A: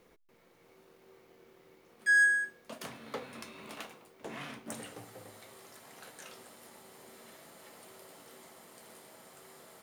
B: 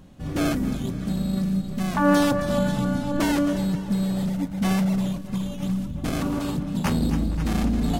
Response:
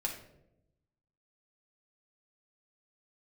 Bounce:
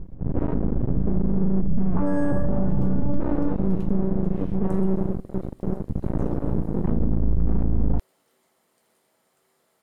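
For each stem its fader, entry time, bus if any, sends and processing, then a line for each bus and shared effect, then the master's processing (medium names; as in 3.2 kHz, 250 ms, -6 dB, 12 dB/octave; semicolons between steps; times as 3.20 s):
-13.5 dB, 0.00 s, no send, none
-3.0 dB, 0.00 s, send -21.5 dB, tilt EQ -4.5 dB/octave; half-wave rectifier; low-pass 1.3 kHz 12 dB/octave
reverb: on, RT60 0.85 s, pre-delay 5 ms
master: peak limiter -11.5 dBFS, peak gain reduction 10.5 dB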